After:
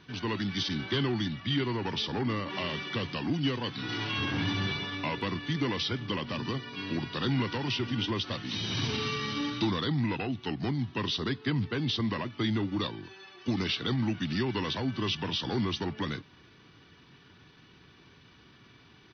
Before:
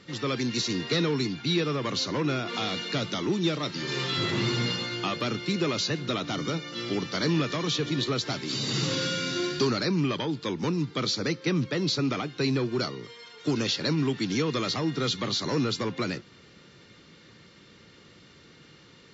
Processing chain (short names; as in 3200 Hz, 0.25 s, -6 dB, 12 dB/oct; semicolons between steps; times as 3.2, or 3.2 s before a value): pitch shift -3.5 st; gain -3 dB